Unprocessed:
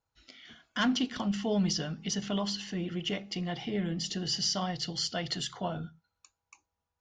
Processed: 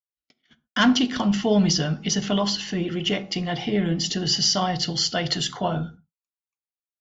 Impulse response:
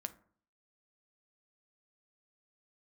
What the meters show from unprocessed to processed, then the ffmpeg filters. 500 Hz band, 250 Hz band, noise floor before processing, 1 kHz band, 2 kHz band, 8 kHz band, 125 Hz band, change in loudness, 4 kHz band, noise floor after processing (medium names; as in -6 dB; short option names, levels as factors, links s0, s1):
+9.5 dB, +9.0 dB, under -85 dBFS, +10.0 dB, +9.5 dB, +9.0 dB, +9.0 dB, +9.5 dB, +9.5 dB, under -85 dBFS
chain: -filter_complex "[0:a]agate=range=0.00355:threshold=0.00398:ratio=16:detection=peak,asplit=2[s0][s1];[1:a]atrim=start_sample=2205,atrim=end_sample=4410,asetrate=32193,aresample=44100[s2];[s1][s2]afir=irnorm=-1:irlink=0,volume=2.24[s3];[s0][s3]amix=inputs=2:normalize=0,aresample=16000,aresample=44100"